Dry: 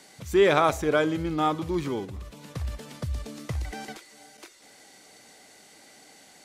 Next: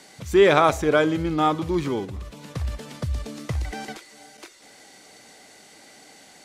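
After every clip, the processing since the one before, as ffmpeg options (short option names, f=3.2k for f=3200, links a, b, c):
-af "highshelf=f=12k:g=-6.5,volume=4dB"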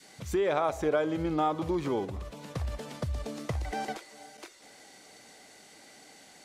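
-af "acompressor=threshold=-24dB:ratio=10,adynamicequalizer=threshold=0.00631:dfrequency=660:dqfactor=0.92:tfrequency=660:tqfactor=0.92:attack=5:release=100:ratio=0.375:range=4:mode=boostabove:tftype=bell,volume=-4.5dB"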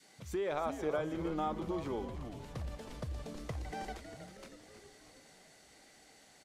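-filter_complex "[0:a]asplit=8[a][b][c][d][e][f][g][h];[b]adelay=318,afreqshift=-120,volume=-9.5dB[i];[c]adelay=636,afreqshift=-240,volume=-14.2dB[j];[d]adelay=954,afreqshift=-360,volume=-19dB[k];[e]adelay=1272,afreqshift=-480,volume=-23.7dB[l];[f]adelay=1590,afreqshift=-600,volume=-28.4dB[m];[g]adelay=1908,afreqshift=-720,volume=-33.2dB[n];[h]adelay=2226,afreqshift=-840,volume=-37.9dB[o];[a][i][j][k][l][m][n][o]amix=inputs=8:normalize=0,volume=-8dB"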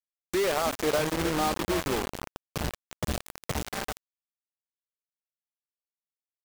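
-af "acrusher=bits=5:mix=0:aa=0.000001,volume=7.5dB"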